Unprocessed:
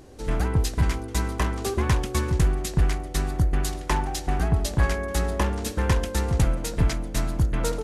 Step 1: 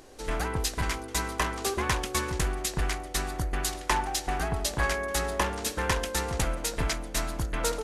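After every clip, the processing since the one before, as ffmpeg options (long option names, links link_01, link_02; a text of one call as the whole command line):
ffmpeg -i in.wav -af "equalizer=frequency=100:width=0.32:gain=-14,volume=2.5dB" out.wav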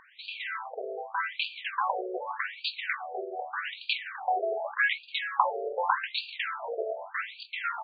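ffmpeg -i in.wav -af "afftfilt=real='re*between(b*sr/1024,490*pow(3400/490,0.5+0.5*sin(2*PI*0.84*pts/sr))/1.41,490*pow(3400/490,0.5+0.5*sin(2*PI*0.84*pts/sr))*1.41)':imag='im*between(b*sr/1024,490*pow(3400/490,0.5+0.5*sin(2*PI*0.84*pts/sr))/1.41,490*pow(3400/490,0.5+0.5*sin(2*PI*0.84*pts/sr))*1.41)':win_size=1024:overlap=0.75,volume=7dB" out.wav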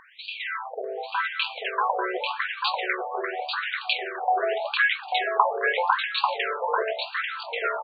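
ffmpeg -i in.wav -af "aecho=1:1:842:0.631,volume=4dB" out.wav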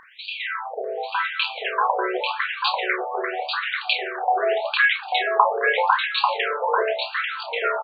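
ffmpeg -i in.wav -filter_complex "[0:a]asplit=2[link_01][link_02];[link_02]adelay=32,volume=-9.5dB[link_03];[link_01][link_03]amix=inputs=2:normalize=0,volume=3dB" out.wav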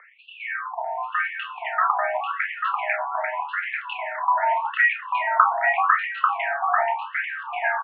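ffmpeg -i in.wav -af "highpass=frequency=200:width_type=q:width=0.5412,highpass=frequency=200:width_type=q:width=1.307,lowpass=frequency=2100:width_type=q:width=0.5176,lowpass=frequency=2100:width_type=q:width=0.7071,lowpass=frequency=2100:width_type=q:width=1.932,afreqshift=250" out.wav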